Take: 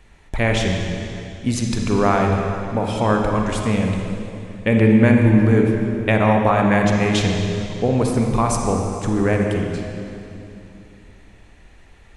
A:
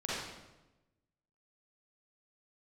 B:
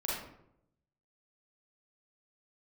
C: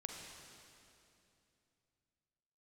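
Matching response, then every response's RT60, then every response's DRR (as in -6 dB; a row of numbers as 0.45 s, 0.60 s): C; 1.0 s, 0.75 s, 2.8 s; -8.5 dB, -6.5 dB, 1.0 dB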